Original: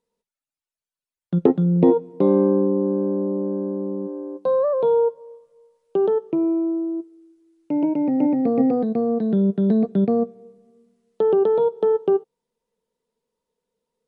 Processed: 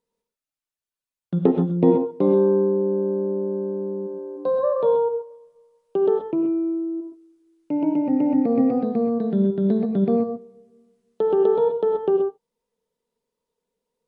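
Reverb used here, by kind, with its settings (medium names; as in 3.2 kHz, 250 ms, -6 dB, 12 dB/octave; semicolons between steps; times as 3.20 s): gated-style reverb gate 150 ms rising, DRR 4.5 dB; trim -2 dB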